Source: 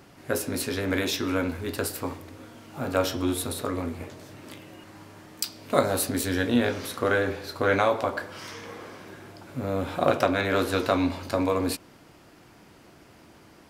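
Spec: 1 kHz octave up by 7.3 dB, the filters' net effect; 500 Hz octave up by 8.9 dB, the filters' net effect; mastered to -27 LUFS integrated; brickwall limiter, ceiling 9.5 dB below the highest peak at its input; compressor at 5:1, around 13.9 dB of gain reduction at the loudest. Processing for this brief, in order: peaking EQ 500 Hz +8.5 dB; peaking EQ 1 kHz +7 dB; compression 5:1, threshold -24 dBFS; trim +4.5 dB; peak limiter -14 dBFS

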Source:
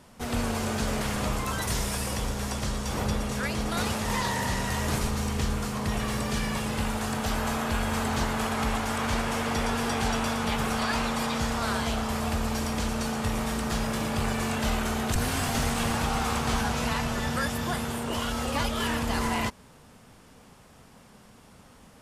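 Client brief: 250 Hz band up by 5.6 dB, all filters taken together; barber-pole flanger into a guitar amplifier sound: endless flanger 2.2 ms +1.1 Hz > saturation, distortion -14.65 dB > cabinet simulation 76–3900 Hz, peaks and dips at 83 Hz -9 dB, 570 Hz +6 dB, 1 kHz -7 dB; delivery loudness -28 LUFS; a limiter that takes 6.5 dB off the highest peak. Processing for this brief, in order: peaking EQ 250 Hz +6.5 dB; peak limiter -18.5 dBFS; endless flanger 2.2 ms +1.1 Hz; saturation -27 dBFS; cabinet simulation 76–3900 Hz, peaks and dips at 83 Hz -9 dB, 570 Hz +6 dB, 1 kHz -7 dB; trim +6 dB

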